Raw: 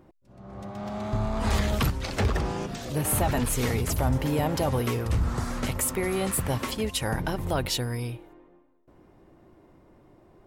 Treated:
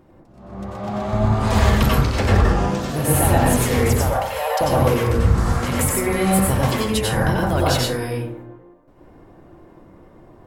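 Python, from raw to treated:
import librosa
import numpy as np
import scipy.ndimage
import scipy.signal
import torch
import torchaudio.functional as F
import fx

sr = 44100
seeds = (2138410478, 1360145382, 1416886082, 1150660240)

y = fx.steep_highpass(x, sr, hz=480.0, slope=96, at=(3.99, 4.61))
y = fx.rev_plate(y, sr, seeds[0], rt60_s=0.75, hf_ratio=0.35, predelay_ms=80, drr_db=-5.0)
y = y * librosa.db_to_amplitude(3.0)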